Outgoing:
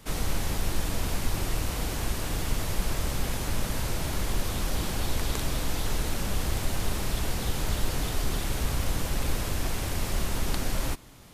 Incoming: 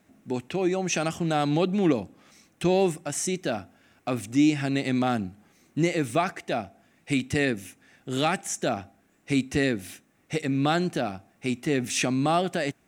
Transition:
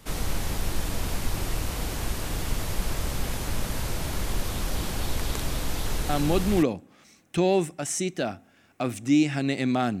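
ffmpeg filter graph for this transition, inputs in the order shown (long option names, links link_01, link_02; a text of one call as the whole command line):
ffmpeg -i cue0.wav -i cue1.wav -filter_complex "[0:a]apad=whole_dur=10,atrim=end=10,atrim=end=6.63,asetpts=PTS-STARTPTS[link_01];[1:a]atrim=start=1.36:end=5.27,asetpts=PTS-STARTPTS[link_02];[link_01][link_02]acrossfade=duration=0.54:curve1=log:curve2=log" out.wav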